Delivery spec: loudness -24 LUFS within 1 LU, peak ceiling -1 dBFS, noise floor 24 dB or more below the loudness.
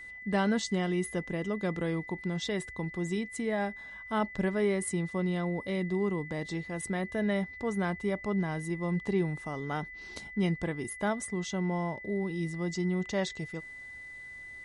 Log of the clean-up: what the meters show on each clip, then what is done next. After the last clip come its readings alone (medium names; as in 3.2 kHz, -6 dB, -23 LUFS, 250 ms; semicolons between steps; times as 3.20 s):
steady tone 2 kHz; tone level -43 dBFS; loudness -32.5 LUFS; peak level -16.0 dBFS; loudness target -24.0 LUFS
-> band-stop 2 kHz, Q 30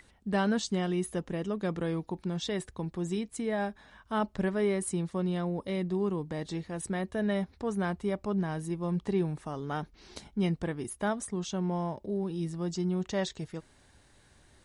steady tone not found; loudness -33.0 LUFS; peak level -16.5 dBFS; loudness target -24.0 LUFS
-> trim +9 dB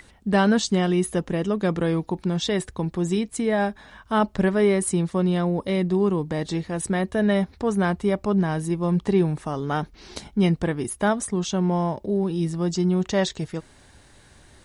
loudness -24.0 LUFS; peak level -7.5 dBFS; noise floor -53 dBFS